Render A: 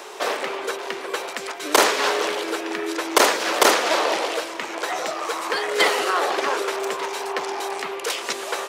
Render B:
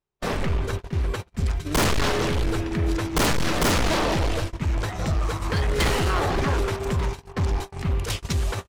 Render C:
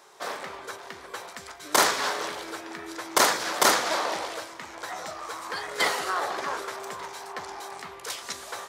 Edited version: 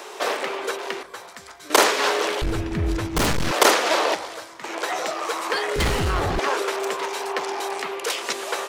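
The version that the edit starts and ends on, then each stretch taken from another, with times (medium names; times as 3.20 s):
A
1.03–1.70 s: from C
2.42–3.51 s: from B
4.15–4.64 s: from C
5.76–6.39 s: from B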